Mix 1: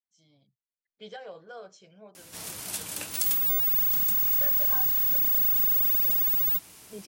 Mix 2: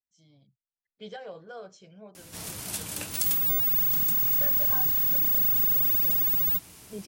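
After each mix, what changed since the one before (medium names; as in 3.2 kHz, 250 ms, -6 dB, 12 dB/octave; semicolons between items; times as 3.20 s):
master: add bass shelf 240 Hz +8.5 dB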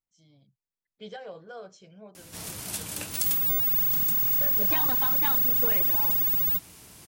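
second voice: entry -2.35 s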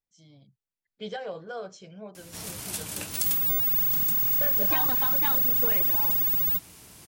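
first voice +5.5 dB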